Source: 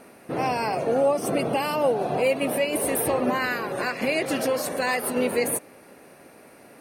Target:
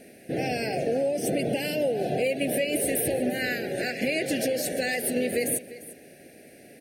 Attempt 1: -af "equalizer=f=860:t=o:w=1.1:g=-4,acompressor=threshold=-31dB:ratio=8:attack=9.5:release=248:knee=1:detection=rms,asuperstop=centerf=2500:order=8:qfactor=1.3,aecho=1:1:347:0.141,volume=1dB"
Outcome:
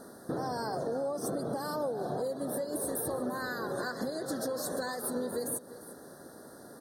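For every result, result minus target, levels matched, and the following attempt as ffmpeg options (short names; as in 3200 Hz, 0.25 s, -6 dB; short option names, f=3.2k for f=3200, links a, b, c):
compressor: peak gain reduction +8 dB; 1000 Hz band +6.0 dB
-af "equalizer=f=860:t=o:w=1.1:g=-4,acompressor=threshold=-22dB:ratio=8:attack=9.5:release=248:knee=1:detection=rms,asuperstop=centerf=2500:order=8:qfactor=1.3,aecho=1:1:347:0.141,volume=1dB"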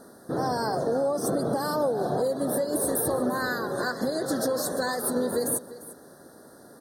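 1000 Hz band +6.0 dB
-af "equalizer=f=860:t=o:w=1.1:g=-4,acompressor=threshold=-22dB:ratio=8:attack=9.5:release=248:knee=1:detection=rms,asuperstop=centerf=1100:order=8:qfactor=1.3,aecho=1:1:347:0.141,volume=1dB"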